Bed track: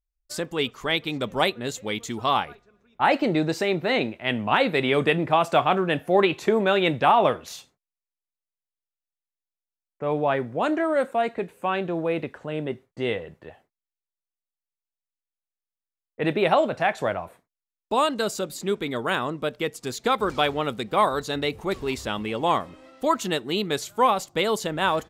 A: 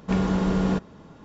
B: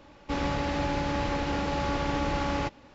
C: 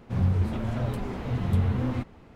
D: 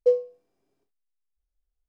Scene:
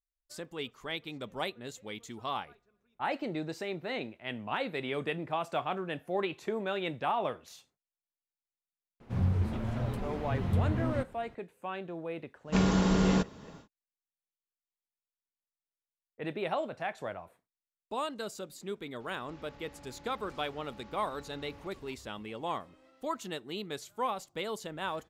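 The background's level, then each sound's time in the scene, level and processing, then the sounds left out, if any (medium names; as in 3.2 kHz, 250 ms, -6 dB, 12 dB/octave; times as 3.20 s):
bed track -13 dB
9.00 s: add C -4.5 dB
12.44 s: add A -3 dB, fades 0.10 s + treble shelf 2.9 kHz +10 dB
19.00 s: add B -8 dB + compression 4:1, threshold -45 dBFS
not used: D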